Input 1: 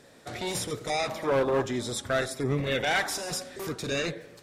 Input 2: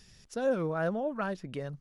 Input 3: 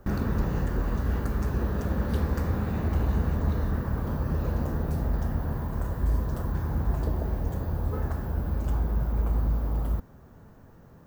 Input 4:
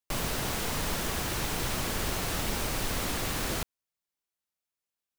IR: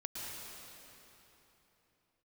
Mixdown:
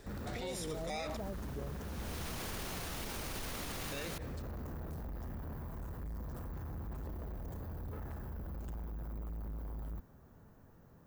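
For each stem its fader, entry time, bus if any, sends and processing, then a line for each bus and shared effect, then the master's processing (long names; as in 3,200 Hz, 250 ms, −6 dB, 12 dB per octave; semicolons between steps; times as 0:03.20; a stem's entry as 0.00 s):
−3.5 dB, 0.00 s, muted 0:01.17–0:03.92, no send, no processing
−7.5 dB, 0.00 s, no send, Butterworth low-pass 820 Hz
−8.5 dB, 0.00 s, no send, soft clipping −31 dBFS, distortion −8 dB; high-shelf EQ 9,100 Hz +6 dB
−2.0 dB, 0.55 s, no send, notch filter 7,700 Hz, Q 16; automatic ducking −23 dB, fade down 0.95 s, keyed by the second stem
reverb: not used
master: brickwall limiter −32 dBFS, peak gain reduction 12.5 dB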